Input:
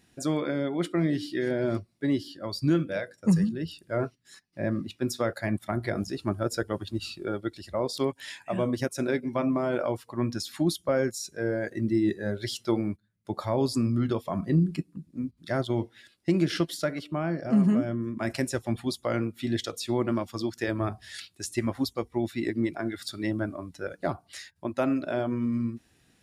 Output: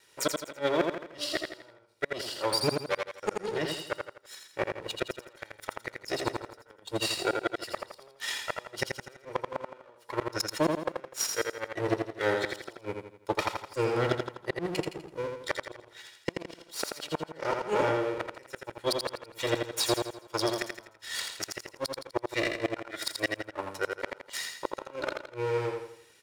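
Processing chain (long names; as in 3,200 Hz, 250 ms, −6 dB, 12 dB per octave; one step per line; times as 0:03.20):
lower of the sound and its delayed copy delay 2.1 ms
high-pass filter 740 Hz 6 dB per octave
high-shelf EQ 11,000 Hz −4.5 dB
in parallel at −8 dB: dead-zone distortion −49.5 dBFS
on the sum: gate with flip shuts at −22 dBFS, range −34 dB
on a send: repeating echo 83 ms, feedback 42%, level −4.5 dB
on the sum: level +7 dB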